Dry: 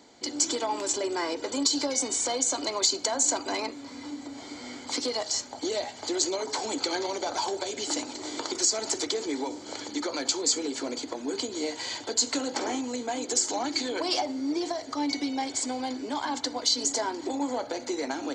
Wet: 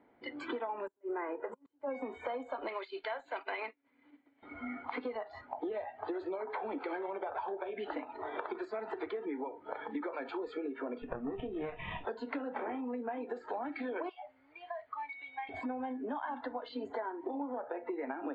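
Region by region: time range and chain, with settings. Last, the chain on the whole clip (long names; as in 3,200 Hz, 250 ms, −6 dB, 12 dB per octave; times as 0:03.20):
0:00.87–0:01.95: high shelf with overshoot 5,900 Hz +10 dB, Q 3 + notch filter 2,300 Hz, Q 27 + gate with flip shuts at −12 dBFS, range −34 dB
0:02.68–0:04.43: meter weighting curve D + downward expander −27 dBFS + downward compressor 20 to 1, threshold −22 dBFS
0:11.02–0:12.05: lower of the sound and its delayed copy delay 0.34 ms + double-tracking delay 25 ms −13 dB
0:14.09–0:15.49: guitar amp tone stack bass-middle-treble 10-0-10 + downward compressor 3 to 1, threshold −36 dBFS
whole clip: inverse Chebyshev low-pass filter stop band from 5,500 Hz, stop band 50 dB; noise reduction from a noise print of the clip's start 17 dB; downward compressor 6 to 1, threshold −44 dBFS; level +7.5 dB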